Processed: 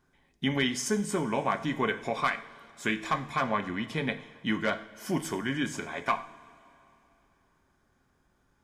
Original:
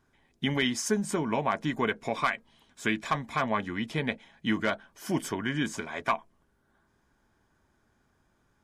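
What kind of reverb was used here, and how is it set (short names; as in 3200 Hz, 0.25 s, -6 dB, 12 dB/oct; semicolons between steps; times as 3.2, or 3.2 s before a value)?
two-slope reverb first 0.49 s, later 3 s, from -17 dB, DRR 7 dB; gain -1 dB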